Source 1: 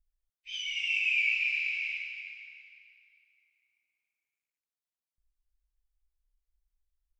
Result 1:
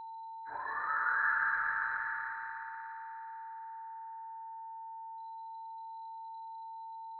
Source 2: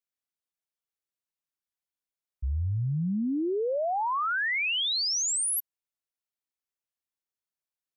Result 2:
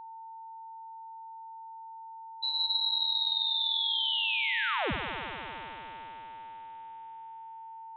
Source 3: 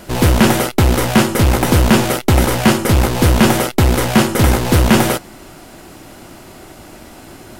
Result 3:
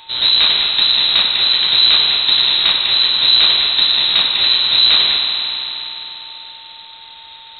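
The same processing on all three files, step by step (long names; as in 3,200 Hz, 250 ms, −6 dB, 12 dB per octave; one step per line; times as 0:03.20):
spring reverb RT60 3.9 s, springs 49 ms, chirp 30 ms, DRR 1 dB
steady tone 3,100 Hz −38 dBFS
voice inversion scrambler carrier 4,000 Hz
level −4.5 dB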